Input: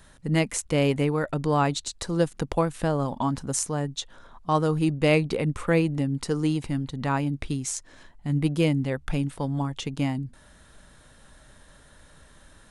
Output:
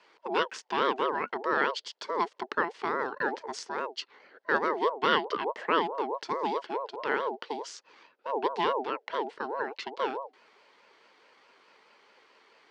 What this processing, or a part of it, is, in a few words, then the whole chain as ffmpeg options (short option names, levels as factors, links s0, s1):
voice changer toy: -af "highpass=160,aeval=exprs='val(0)*sin(2*PI*670*n/s+670*0.25/4.7*sin(2*PI*4.7*n/s))':c=same,highpass=400,equalizer=f=440:t=q:w=4:g=6,equalizer=f=710:t=q:w=4:g=-7,equalizer=f=1200:t=q:w=4:g=-4,equalizer=f=2400:t=q:w=4:g=-6,equalizer=f=3700:t=q:w=4:g=-5,lowpass=f=4700:w=0.5412,lowpass=f=4700:w=1.3066,equalizer=f=2400:w=0.45:g=4"